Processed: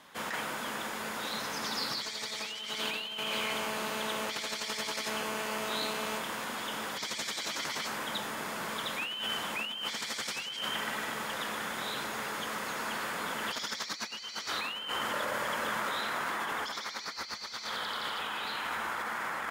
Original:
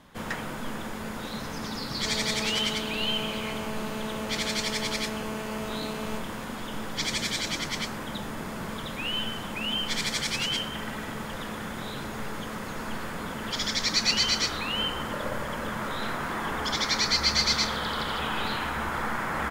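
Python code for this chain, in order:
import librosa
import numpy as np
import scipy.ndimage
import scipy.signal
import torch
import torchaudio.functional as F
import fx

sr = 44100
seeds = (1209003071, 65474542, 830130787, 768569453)

y = fx.highpass(x, sr, hz=820.0, slope=6)
y = fx.over_compress(y, sr, threshold_db=-36.0, ratio=-1.0)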